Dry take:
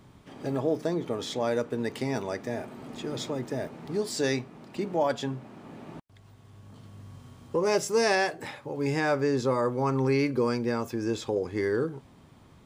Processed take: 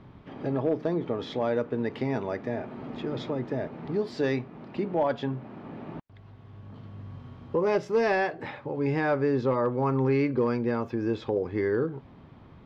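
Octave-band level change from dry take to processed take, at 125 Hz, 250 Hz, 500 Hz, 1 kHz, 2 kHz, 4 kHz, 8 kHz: +1.5 dB, +1.5 dB, +0.5 dB, 0.0 dB, -1.5 dB, -7.5 dB, under -15 dB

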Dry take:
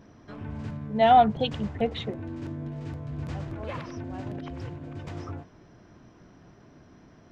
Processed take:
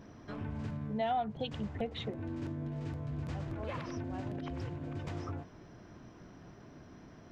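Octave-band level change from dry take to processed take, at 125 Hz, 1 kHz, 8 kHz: -4.0 dB, -15.0 dB, no reading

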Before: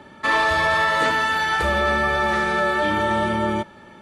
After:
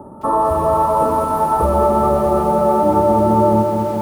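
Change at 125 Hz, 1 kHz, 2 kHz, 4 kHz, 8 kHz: +8.5 dB, +6.5 dB, -22.0 dB, under -15 dB, +0.5 dB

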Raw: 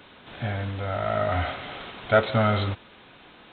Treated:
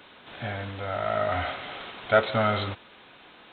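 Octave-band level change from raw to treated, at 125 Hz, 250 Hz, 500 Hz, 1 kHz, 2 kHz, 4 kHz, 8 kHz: -6.5 dB, -4.0 dB, -1.0 dB, -0.5 dB, 0.0 dB, 0.0 dB, no reading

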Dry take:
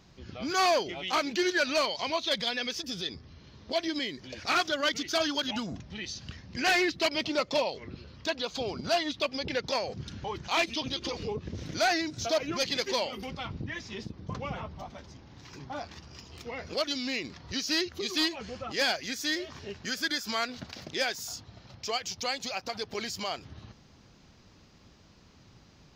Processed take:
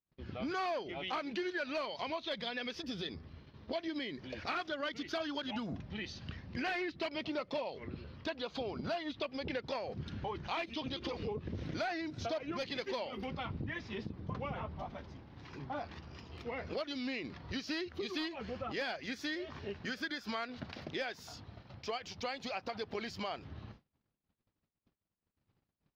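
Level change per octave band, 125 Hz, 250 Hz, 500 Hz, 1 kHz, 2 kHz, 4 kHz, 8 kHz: -2.5 dB, -5.0 dB, -7.5 dB, -8.0 dB, -9.0 dB, -12.0 dB, -19.0 dB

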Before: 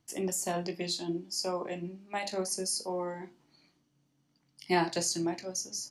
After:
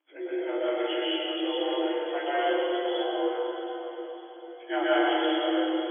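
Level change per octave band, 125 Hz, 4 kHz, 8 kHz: under -35 dB, +5.5 dB, under -40 dB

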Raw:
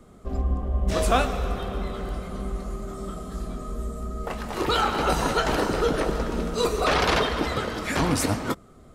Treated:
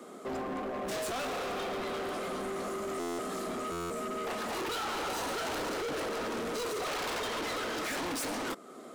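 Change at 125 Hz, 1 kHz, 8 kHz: -20.0 dB, -8.5 dB, -5.5 dB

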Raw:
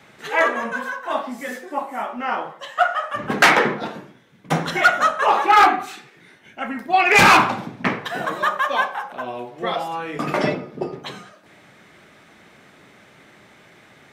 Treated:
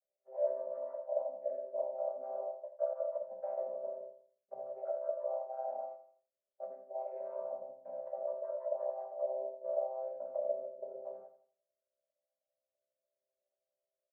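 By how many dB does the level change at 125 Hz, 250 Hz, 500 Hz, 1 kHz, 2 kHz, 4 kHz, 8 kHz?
under -40 dB, under -35 dB, -9.5 dB, -28.5 dB, under -40 dB, under -40 dB, under -40 dB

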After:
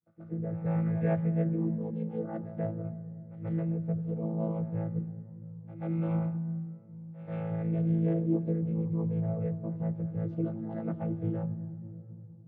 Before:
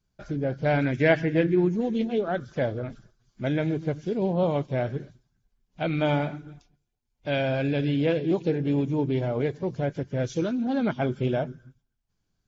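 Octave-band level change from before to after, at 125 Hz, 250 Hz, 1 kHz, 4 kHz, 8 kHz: -1.5 dB, -4.5 dB, -12.5 dB, under -30 dB, no reading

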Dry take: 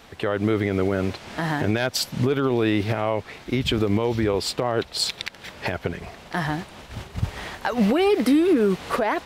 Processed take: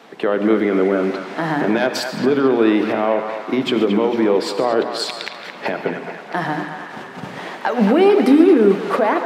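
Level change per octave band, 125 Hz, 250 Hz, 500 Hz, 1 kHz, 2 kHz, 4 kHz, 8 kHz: -3.5 dB, +6.5 dB, +7.0 dB, +6.5 dB, +4.5 dB, +0.5 dB, -2.5 dB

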